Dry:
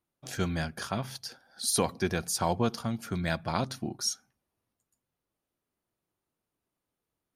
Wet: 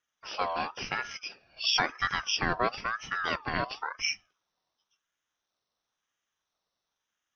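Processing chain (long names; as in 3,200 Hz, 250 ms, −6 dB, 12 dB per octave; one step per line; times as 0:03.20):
hearing-aid frequency compression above 3,400 Hz 4 to 1
ring modulator whose carrier an LFO sweeps 1,200 Hz, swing 30%, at 0.97 Hz
level +2 dB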